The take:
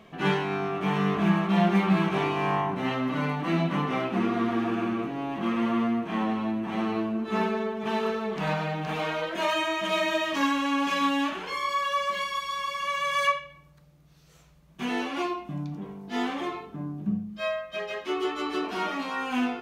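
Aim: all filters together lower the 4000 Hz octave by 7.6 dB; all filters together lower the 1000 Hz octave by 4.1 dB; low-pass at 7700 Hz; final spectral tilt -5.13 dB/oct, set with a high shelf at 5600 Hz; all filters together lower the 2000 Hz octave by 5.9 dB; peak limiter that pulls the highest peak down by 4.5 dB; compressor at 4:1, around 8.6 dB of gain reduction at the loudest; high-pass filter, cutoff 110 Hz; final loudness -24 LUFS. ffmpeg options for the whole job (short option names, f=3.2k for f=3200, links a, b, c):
-af "highpass=110,lowpass=7.7k,equalizer=f=1k:t=o:g=-3.5,equalizer=f=2k:t=o:g=-4,equalizer=f=4k:t=o:g=-6.5,highshelf=f=5.6k:g=-5.5,acompressor=threshold=-29dB:ratio=4,volume=10dB,alimiter=limit=-15dB:level=0:latency=1"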